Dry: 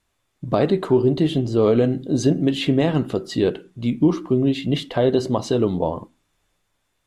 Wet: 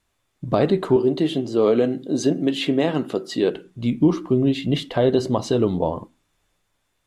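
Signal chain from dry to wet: 0.96–3.54 s: high-pass 220 Hz 12 dB/octave

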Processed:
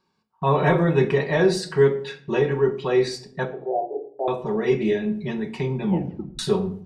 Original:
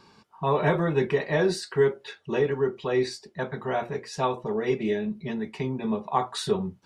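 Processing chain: 3.45–4.28 s: Chebyshev band-pass 290–820 Hz, order 5; gate -45 dBFS, range -20 dB; 5.84 s: tape stop 0.55 s; simulated room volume 880 m³, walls furnished, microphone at 1 m; trim +3 dB

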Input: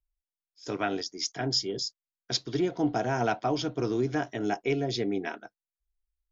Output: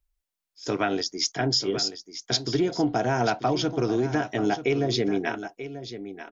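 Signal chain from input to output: compression 3:1, threshold -28 dBFS, peak gain reduction 6 dB; delay 937 ms -12 dB; trim +7 dB

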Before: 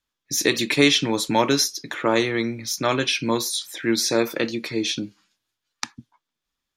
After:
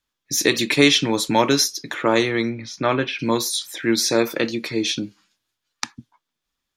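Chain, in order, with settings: 2.49–3.18 s: low-pass 4 kHz -> 2 kHz 12 dB/octave; trim +2 dB

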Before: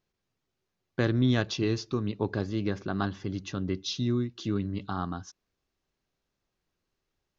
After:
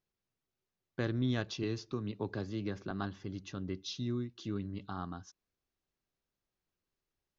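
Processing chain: 1.63–2.91 s: three bands compressed up and down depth 40%; trim -8 dB

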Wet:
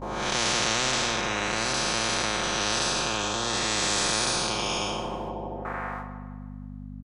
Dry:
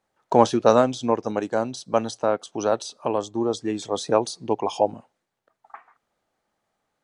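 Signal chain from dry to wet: spectral blur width 319 ms; hum notches 60/120/180 Hz; gate with hold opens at -48 dBFS; treble shelf 2.3 kHz -9 dB; comb 5.6 ms; hum 50 Hz, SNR 28 dB; on a send: filtered feedback delay 157 ms, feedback 51%, low-pass 4.7 kHz, level -12.5 dB; on the sum: spectrum-flattening compressor 10:1

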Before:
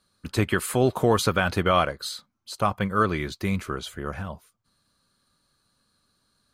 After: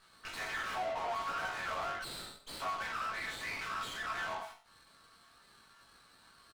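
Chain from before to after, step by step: low-pass that closes with the level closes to 1.4 kHz, closed at -19 dBFS; steep high-pass 660 Hz 48 dB/octave; comb 4.5 ms, depth 45%; compression, threshold -29 dBFS, peak gain reduction 11 dB; chord resonator F#2 minor, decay 0.43 s; overdrive pedal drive 32 dB, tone 2.6 kHz, clips at -34 dBFS; chorus 1.3 Hz, delay 16 ms, depth 2.8 ms; sliding maximum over 5 samples; trim +6.5 dB

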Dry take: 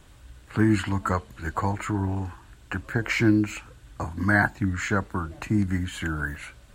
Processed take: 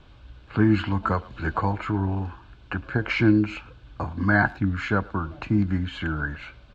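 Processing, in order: low-pass 4.4 kHz 24 dB/octave; band-stop 1.9 kHz, Q 5.5; speakerphone echo 110 ms, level -22 dB; 1.03–1.58 s: three bands compressed up and down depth 70%; trim +1.5 dB

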